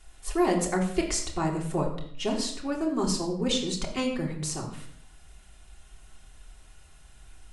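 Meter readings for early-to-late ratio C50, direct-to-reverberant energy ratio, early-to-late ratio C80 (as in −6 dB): 7.5 dB, −2.5 dB, 10.0 dB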